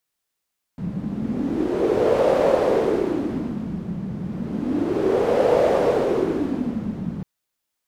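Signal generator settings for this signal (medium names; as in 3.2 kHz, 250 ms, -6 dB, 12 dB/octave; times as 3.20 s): wind-like swept noise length 6.45 s, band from 180 Hz, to 530 Hz, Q 4.9, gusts 2, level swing 11 dB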